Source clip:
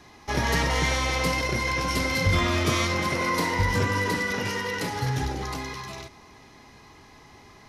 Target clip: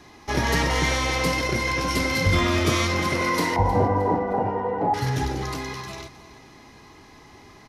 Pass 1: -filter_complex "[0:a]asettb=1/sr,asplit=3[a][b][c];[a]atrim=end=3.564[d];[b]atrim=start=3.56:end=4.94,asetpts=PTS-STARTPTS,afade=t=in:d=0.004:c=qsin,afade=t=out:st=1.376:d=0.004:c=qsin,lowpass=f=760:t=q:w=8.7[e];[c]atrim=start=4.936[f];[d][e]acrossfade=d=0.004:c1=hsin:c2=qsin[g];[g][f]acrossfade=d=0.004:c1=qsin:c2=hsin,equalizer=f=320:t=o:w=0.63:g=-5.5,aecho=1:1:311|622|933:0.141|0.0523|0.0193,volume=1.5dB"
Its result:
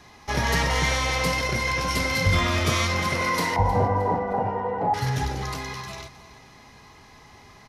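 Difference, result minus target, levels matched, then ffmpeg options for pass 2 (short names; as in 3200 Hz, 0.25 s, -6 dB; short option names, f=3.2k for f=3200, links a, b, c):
250 Hz band -3.5 dB
-filter_complex "[0:a]asettb=1/sr,asplit=3[a][b][c];[a]atrim=end=3.564[d];[b]atrim=start=3.56:end=4.94,asetpts=PTS-STARTPTS,afade=t=in:d=0.004:c=qsin,afade=t=out:st=1.376:d=0.004:c=qsin,lowpass=f=760:t=q:w=8.7[e];[c]atrim=start=4.936[f];[d][e]acrossfade=d=0.004:c1=hsin:c2=qsin[g];[g][f]acrossfade=d=0.004:c1=qsin:c2=hsin,equalizer=f=320:t=o:w=0.63:g=3.5,aecho=1:1:311|622|933:0.141|0.0523|0.0193,volume=1.5dB"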